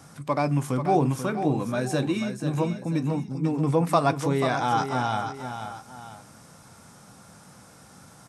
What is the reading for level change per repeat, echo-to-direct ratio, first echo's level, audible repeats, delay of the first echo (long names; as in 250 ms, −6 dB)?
−7.5 dB, −8.0 dB, −8.5 dB, 2, 488 ms